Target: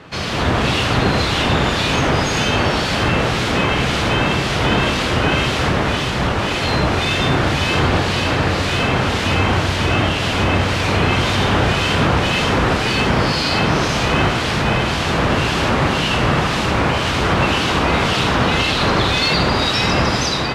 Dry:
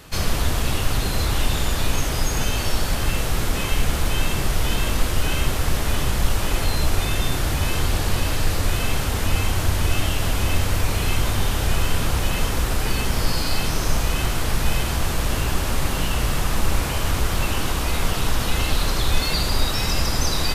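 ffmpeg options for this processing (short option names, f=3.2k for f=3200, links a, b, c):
-filter_complex "[0:a]acrossover=split=2300[a][b];[a]aeval=exprs='val(0)*(1-0.5/2+0.5/2*cos(2*PI*1.9*n/s))':c=same[c];[b]aeval=exprs='val(0)*(1-0.5/2-0.5/2*cos(2*PI*1.9*n/s))':c=same[d];[c][d]amix=inputs=2:normalize=0,dynaudnorm=f=170:g=5:m=11.5dB,highpass=120,lowpass=3.7k,asplit=2[e][f];[f]alimiter=limit=-16.5dB:level=0:latency=1:release=328,volume=3dB[g];[e][g]amix=inputs=2:normalize=0"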